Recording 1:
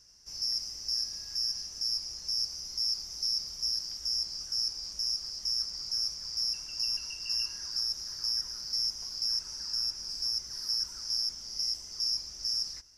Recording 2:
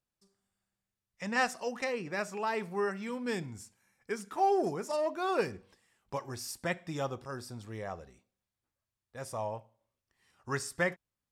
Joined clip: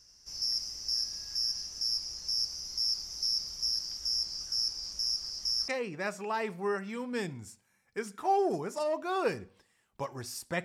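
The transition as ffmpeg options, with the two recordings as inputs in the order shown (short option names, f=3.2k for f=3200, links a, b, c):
-filter_complex "[0:a]apad=whole_dur=10.64,atrim=end=10.64,atrim=end=5.682[a];[1:a]atrim=start=1.808:end=6.77[b];[a][b]acrossfade=d=0.004:c1=hsin:c2=hsin"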